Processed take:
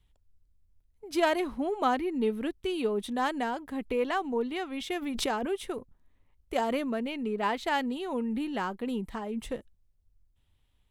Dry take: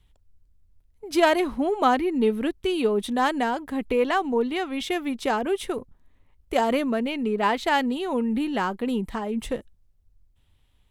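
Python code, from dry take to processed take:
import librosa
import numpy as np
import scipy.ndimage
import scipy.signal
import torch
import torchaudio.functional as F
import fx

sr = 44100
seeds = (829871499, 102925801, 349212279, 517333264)

y = fx.pre_swell(x, sr, db_per_s=40.0, at=(5.01, 5.45), fade=0.02)
y = y * librosa.db_to_amplitude(-6.5)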